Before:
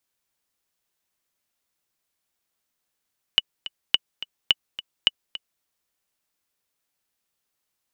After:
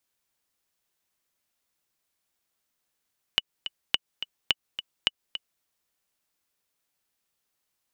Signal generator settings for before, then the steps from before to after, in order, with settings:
click track 213 BPM, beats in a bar 2, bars 4, 2,950 Hz, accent 15.5 dB −3 dBFS
downward compressor, threshold −21 dBFS

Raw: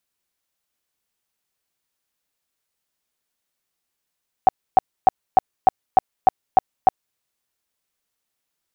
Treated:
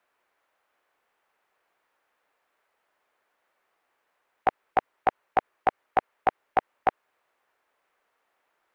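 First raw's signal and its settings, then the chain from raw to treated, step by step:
tone bursts 758 Hz, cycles 13, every 0.30 s, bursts 9, −7 dBFS
three-way crossover with the lows and the highs turned down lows −20 dB, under 390 Hz, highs −24 dB, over 2,100 Hz
every bin compressed towards the loudest bin 2 to 1

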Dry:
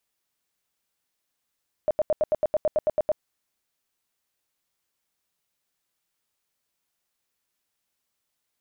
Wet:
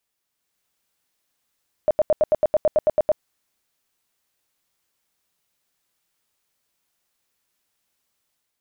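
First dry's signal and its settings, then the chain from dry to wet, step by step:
tone bursts 614 Hz, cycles 17, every 0.11 s, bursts 12, −18 dBFS
automatic gain control gain up to 5 dB

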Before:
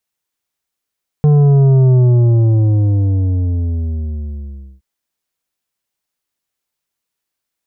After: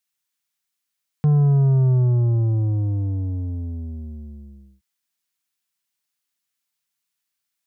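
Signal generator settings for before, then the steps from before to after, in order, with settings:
bass drop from 150 Hz, over 3.57 s, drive 8.5 dB, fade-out 2.89 s, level −7.5 dB
high-pass filter 150 Hz 12 dB per octave
parametric band 470 Hz −12.5 dB 2 octaves

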